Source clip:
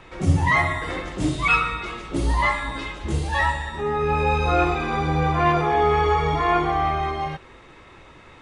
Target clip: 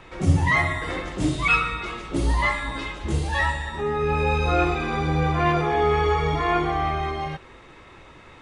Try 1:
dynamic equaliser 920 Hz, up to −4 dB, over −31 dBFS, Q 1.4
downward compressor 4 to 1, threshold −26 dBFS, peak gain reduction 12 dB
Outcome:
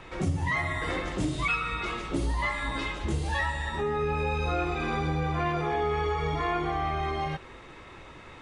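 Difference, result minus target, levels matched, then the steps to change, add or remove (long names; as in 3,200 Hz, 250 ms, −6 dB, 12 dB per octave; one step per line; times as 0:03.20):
downward compressor: peak gain reduction +12 dB
remove: downward compressor 4 to 1, threshold −26 dBFS, peak gain reduction 12 dB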